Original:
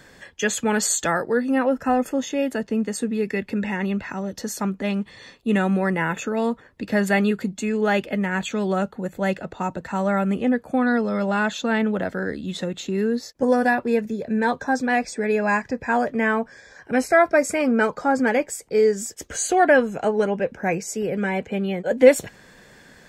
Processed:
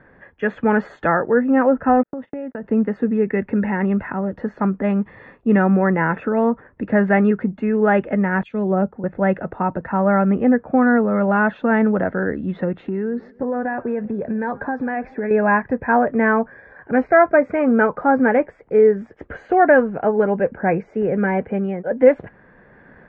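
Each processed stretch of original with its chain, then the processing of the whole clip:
2.03–2.64 s: gate -31 dBFS, range -48 dB + compression 12:1, threshold -29 dBFS + distance through air 160 m
8.43–9.04 s: dynamic bell 1.5 kHz, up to -8 dB, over -41 dBFS, Q 0.94 + three bands expanded up and down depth 100%
12.80–15.31 s: compression 5:1, threshold -25 dBFS + modulated delay 135 ms, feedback 52%, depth 161 cents, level -23.5 dB
whole clip: low-pass 1.8 kHz 24 dB/octave; level rider gain up to 5.5 dB

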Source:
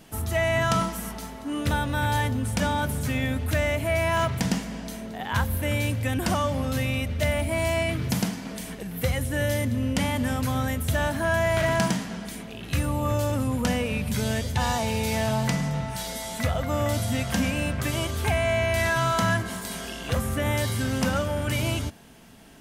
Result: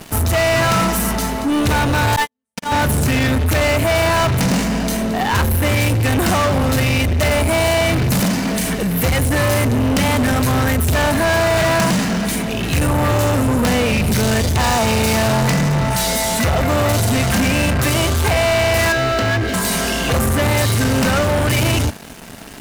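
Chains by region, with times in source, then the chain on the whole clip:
2.16–2.72 s: high-pass 570 Hz 6 dB/octave + comb 4.4 ms, depth 77% + gate -25 dBFS, range -41 dB
18.92–19.54 s: jump at every zero crossing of -38 dBFS + distance through air 220 m + static phaser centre 410 Hz, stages 4
whole clip: waveshaping leveller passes 5; band-stop 3.3 kHz, Q 21

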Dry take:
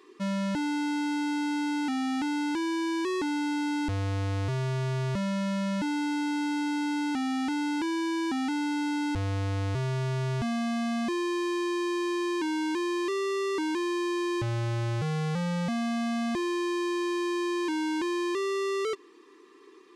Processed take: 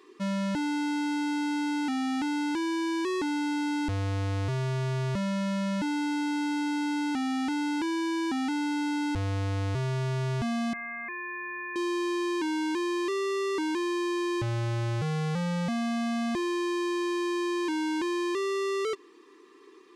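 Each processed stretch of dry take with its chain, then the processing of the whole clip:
10.73–11.76 s: high-pass 540 Hz 24 dB/octave + frequency inversion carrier 2.8 kHz
whole clip: none

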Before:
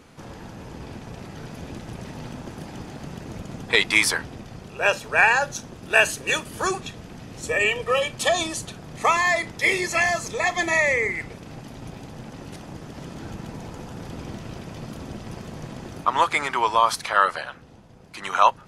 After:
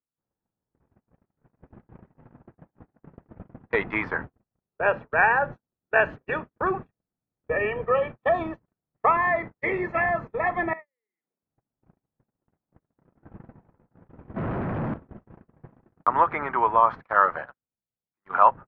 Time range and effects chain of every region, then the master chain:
10.73–11.43 s: compression 16:1, threshold -33 dBFS + high-pass 190 Hz 24 dB/octave
14.36–14.94 s: high-pass 74 Hz 6 dB/octave + waveshaping leveller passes 5
whole clip: low-pass 1.7 kHz 24 dB/octave; gate -32 dBFS, range -50 dB

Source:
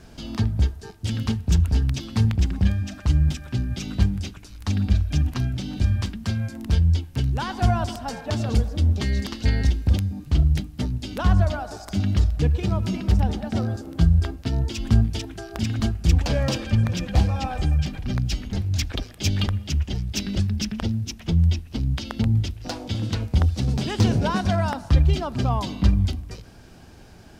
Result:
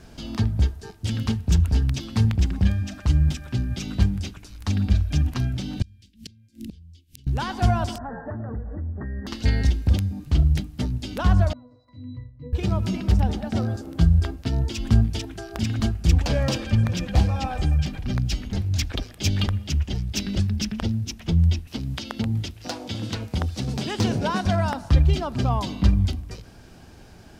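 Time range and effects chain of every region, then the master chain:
5.82–7.27 s: Chebyshev band-stop 300–3000 Hz + inverted gate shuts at -24 dBFS, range -28 dB + tape noise reduction on one side only encoder only
7.98–9.27 s: brick-wall FIR low-pass 2 kHz + compression 4:1, threshold -29 dBFS
11.53–12.53 s: low-pass that closes with the level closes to 2.4 kHz, closed at -14.5 dBFS + pitch-class resonator B, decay 0.32 s
21.67–24.46 s: high-pass 170 Hz 6 dB/octave + tape noise reduction on one side only encoder only
whole clip: none

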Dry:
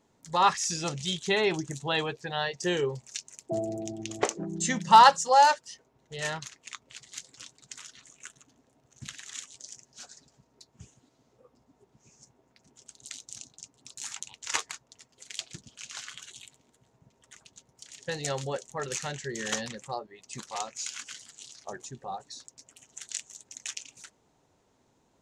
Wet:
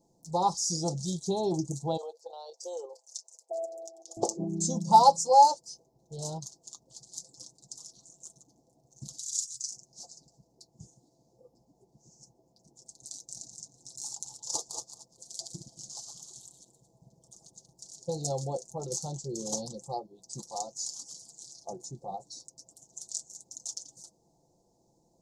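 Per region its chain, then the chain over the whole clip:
1.97–4.17 s: elliptic high-pass 490 Hz, stop band 70 dB + level held to a coarse grid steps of 9 dB
9.19–9.71 s: inverse Chebyshev band-stop 460–1000 Hz, stop band 60 dB + treble shelf 2.2 kHz +8.5 dB + comb 2.3 ms, depth 70%
13.15–17.91 s: chunks repeated in reverse 152 ms, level -6.5 dB + delay 226 ms -17 dB
whole clip: Chebyshev band-stop 820–4800 Hz, order 3; comb 5.9 ms, depth 51%

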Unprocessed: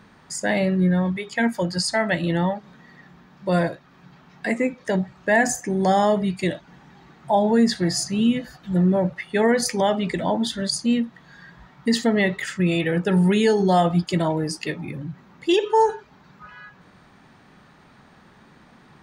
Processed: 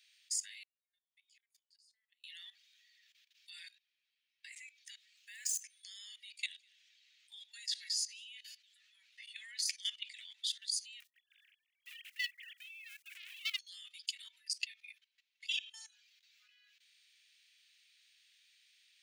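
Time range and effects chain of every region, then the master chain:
0.63–2.24 s: inverted gate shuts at -18 dBFS, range -28 dB + compression, threshold -51 dBFS
3.50–4.52 s: treble shelf 9 kHz -10 dB + tape noise reduction on one side only decoder only
5.17–5.60 s: median filter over 3 samples + treble shelf 6.3 kHz +5 dB
6.12–10.50 s: frequency weighting A + delay 204 ms -22 dB
11.00–13.59 s: formants replaced by sine waves + short-mantissa float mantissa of 4-bit + transformer saturation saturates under 1.8 kHz
14.24–15.95 s: treble shelf 5.6 kHz -8.5 dB + comb 4.5 ms, depth 66%
whole clip: steep high-pass 2.5 kHz 36 dB/octave; level held to a coarse grid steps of 17 dB; trim -1 dB

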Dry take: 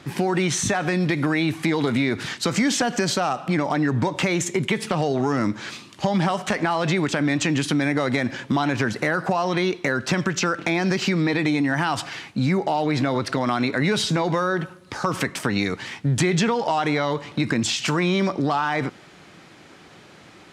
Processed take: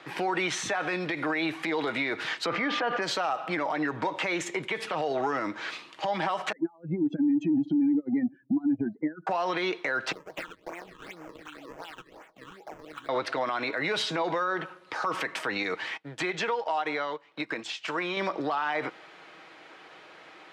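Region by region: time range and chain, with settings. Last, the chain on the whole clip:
2.45–3.01 s: whistle 1.2 kHz -34 dBFS + distance through air 320 m + level flattener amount 50%
6.52–9.27 s: spectral contrast enhancement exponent 3 + resonant low shelf 420 Hz +14 dB, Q 3 + upward expansion 2.5:1, over -17 dBFS
10.12–13.09 s: pre-emphasis filter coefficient 0.9 + decimation with a swept rate 34×, swing 160% 2.7 Hz + phase shifter stages 8, 2 Hz, lowest notch 600–4000 Hz
15.97–18.17 s: bass shelf 80 Hz -12 dB + upward expansion 2.5:1, over -32 dBFS
whole clip: three-band isolator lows -21 dB, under 380 Hz, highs -14 dB, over 3.9 kHz; comb 6.3 ms, depth 32%; peak limiter -19.5 dBFS

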